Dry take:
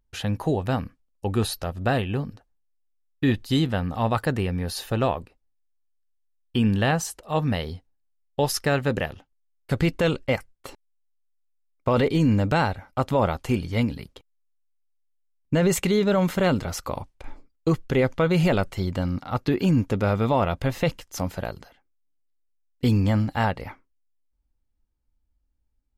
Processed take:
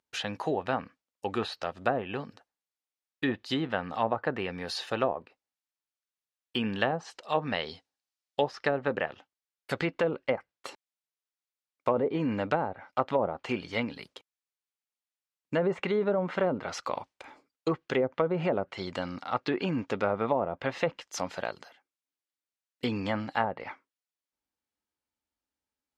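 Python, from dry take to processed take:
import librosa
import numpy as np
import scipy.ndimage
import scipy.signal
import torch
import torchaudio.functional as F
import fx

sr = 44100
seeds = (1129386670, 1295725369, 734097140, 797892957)

y = fx.weighting(x, sr, curve='A')
y = fx.env_lowpass_down(y, sr, base_hz=610.0, full_db=-20.5)
y = fx.peak_eq(y, sr, hz=5000.0, db=6.5, octaves=1.5, at=(6.81, 8.92))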